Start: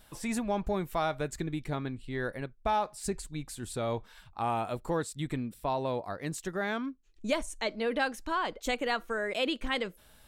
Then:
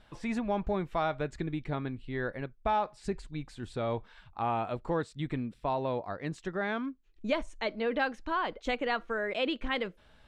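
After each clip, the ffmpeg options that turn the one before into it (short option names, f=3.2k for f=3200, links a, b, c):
-af "lowpass=3.5k"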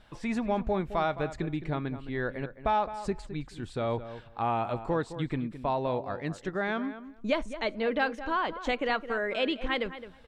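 -filter_complex "[0:a]asplit=2[a][b];[b]adelay=214,lowpass=f=2.4k:p=1,volume=-12dB,asplit=2[c][d];[d]adelay=214,lowpass=f=2.4k:p=1,volume=0.16[e];[a][c][e]amix=inputs=3:normalize=0,volume=2dB"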